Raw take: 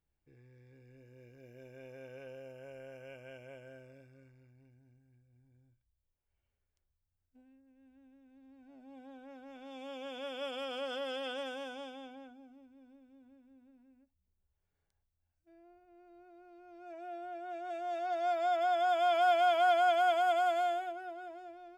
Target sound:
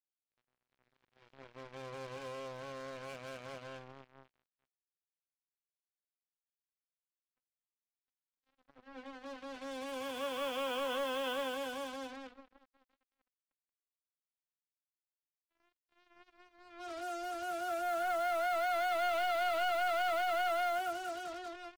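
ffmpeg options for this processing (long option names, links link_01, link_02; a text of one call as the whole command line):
ffmpeg -i in.wav -filter_complex "[0:a]volume=35dB,asoftclip=hard,volume=-35dB,asplit=2[link_01][link_02];[link_02]asetrate=88200,aresample=44100,atempo=0.5,volume=-6dB[link_03];[link_01][link_03]amix=inputs=2:normalize=0,lowpass=frequency=3800:width=0.5412,lowpass=frequency=3800:width=1.3066,acrusher=bits=7:mix=0:aa=0.5,volume=2.5dB" out.wav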